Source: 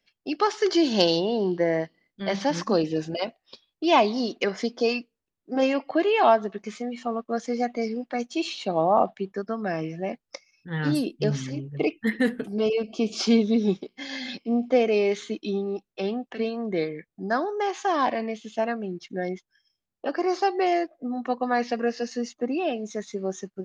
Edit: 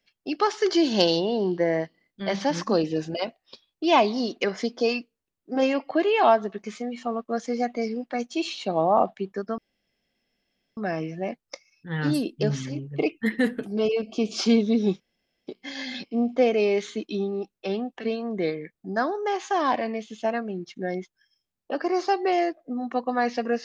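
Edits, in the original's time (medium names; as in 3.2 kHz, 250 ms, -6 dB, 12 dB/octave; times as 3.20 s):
9.58 s: insert room tone 1.19 s
13.81 s: insert room tone 0.47 s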